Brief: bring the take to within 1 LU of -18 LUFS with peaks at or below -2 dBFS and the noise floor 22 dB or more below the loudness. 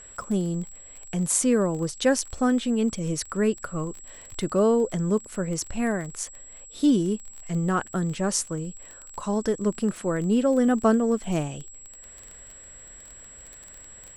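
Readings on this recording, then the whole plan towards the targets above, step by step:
ticks 21/s; steady tone 7700 Hz; tone level -44 dBFS; loudness -25.5 LUFS; peak -7.5 dBFS; loudness target -18.0 LUFS
-> de-click; notch 7700 Hz, Q 30; gain +7.5 dB; limiter -2 dBFS

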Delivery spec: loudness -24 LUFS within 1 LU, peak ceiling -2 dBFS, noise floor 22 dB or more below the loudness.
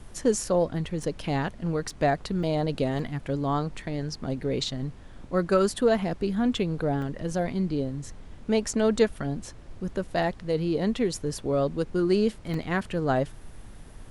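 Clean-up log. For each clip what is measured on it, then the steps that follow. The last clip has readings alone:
dropouts 6; longest dropout 2.7 ms; noise floor -46 dBFS; noise floor target -50 dBFS; loudness -27.5 LUFS; peak -9.0 dBFS; loudness target -24.0 LUFS
-> interpolate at 1.03/1.9/2.43/2.99/7.02/12.54, 2.7 ms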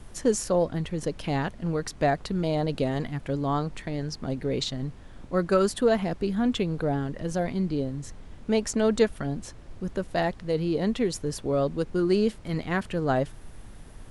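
dropouts 0; noise floor -46 dBFS; noise floor target -50 dBFS
-> noise print and reduce 6 dB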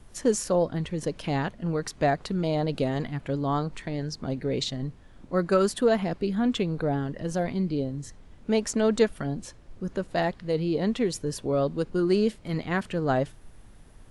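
noise floor -51 dBFS; loudness -27.5 LUFS; peak -9.0 dBFS; loudness target -24.0 LUFS
-> gain +3.5 dB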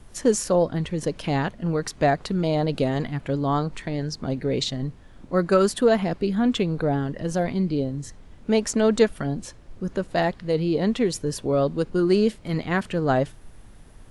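loudness -24.0 LUFS; peak -5.5 dBFS; noise floor -48 dBFS

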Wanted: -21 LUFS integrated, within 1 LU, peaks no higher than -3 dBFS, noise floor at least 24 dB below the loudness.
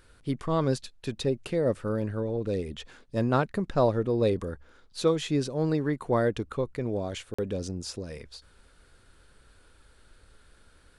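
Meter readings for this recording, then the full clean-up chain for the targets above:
dropouts 1; longest dropout 45 ms; loudness -29.0 LUFS; peak -12.5 dBFS; loudness target -21.0 LUFS
-> interpolate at 7.34, 45 ms; gain +8 dB

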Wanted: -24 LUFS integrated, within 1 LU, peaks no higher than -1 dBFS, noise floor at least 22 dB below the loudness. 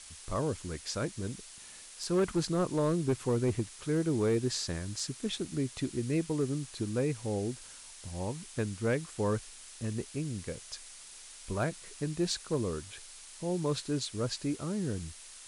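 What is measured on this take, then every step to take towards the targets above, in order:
clipped 0.5%; flat tops at -22.5 dBFS; noise floor -50 dBFS; noise floor target -56 dBFS; loudness -33.5 LUFS; peak -22.5 dBFS; loudness target -24.0 LUFS
-> clip repair -22.5 dBFS; noise print and reduce 6 dB; gain +9.5 dB

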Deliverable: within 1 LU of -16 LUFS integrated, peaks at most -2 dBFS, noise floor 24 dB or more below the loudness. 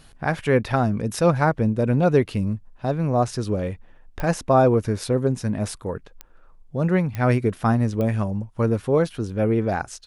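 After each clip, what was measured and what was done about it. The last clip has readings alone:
clicks 4; loudness -22.5 LUFS; peak -6.5 dBFS; loudness target -16.0 LUFS
-> de-click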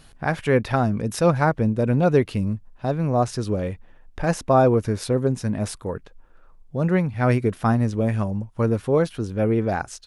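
clicks 0; loudness -22.5 LUFS; peak -6.5 dBFS; loudness target -16.0 LUFS
-> gain +6.5 dB; limiter -2 dBFS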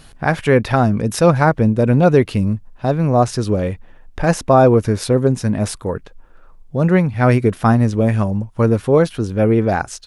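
loudness -16.0 LUFS; peak -2.0 dBFS; noise floor -43 dBFS

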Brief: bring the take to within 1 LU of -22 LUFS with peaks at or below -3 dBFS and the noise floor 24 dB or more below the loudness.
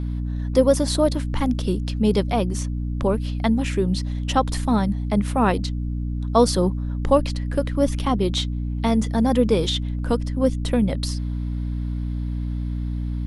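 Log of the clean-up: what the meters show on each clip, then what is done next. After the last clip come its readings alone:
hum 60 Hz; harmonics up to 300 Hz; hum level -23 dBFS; loudness -22.5 LUFS; peak -4.5 dBFS; loudness target -22.0 LUFS
-> notches 60/120/180/240/300 Hz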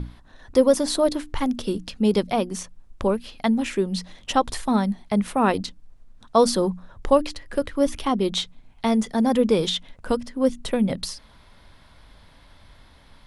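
hum none; loudness -23.5 LUFS; peak -5.0 dBFS; loudness target -22.0 LUFS
-> gain +1.5 dB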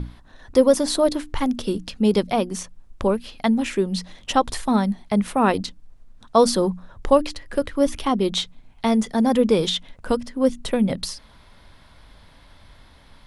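loudness -22.0 LUFS; peak -3.5 dBFS; noise floor -51 dBFS

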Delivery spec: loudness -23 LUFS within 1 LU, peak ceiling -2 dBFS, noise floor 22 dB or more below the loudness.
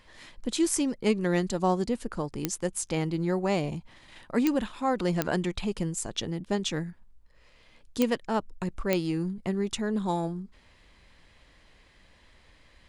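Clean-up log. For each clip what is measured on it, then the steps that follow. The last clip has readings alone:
clicks 5; loudness -29.5 LUFS; peak -9.0 dBFS; loudness target -23.0 LUFS
-> de-click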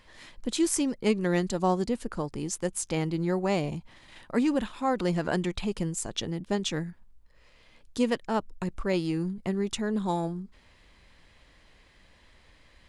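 clicks 0; loudness -29.5 LUFS; peak -12.0 dBFS; loudness target -23.0 LUFS
-> gain +6.5 dB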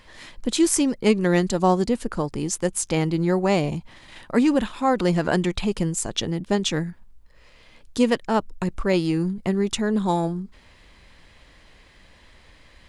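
loudness -23.0 LUFS; peak -5.5 dBFS; noise floor -53 dBFS

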